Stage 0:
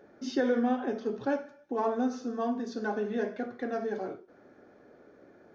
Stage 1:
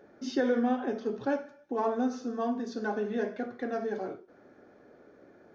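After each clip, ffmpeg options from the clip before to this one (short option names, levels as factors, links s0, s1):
-af anull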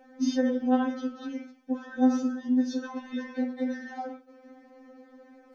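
-af "alimiter=level_in=1.41:limit=0.0631:level=0:latency=1:release=58,volume=0.708,afftfilt=real='re*3.46*eq(mod(b,12),0)':imag='im*3.46*eq(mod(b,12),0)':win_size=2048:overlap=0.75,volume=2.24"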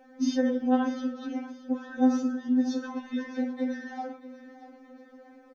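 -af "aecho=1:1:633|1266|1899:0.168|0.0621|0.023"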